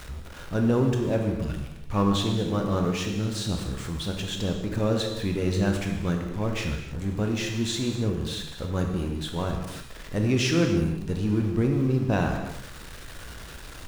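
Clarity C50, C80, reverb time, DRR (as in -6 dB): 4.5 dB, 6.0 dB, no single decay rate, 2.5 dB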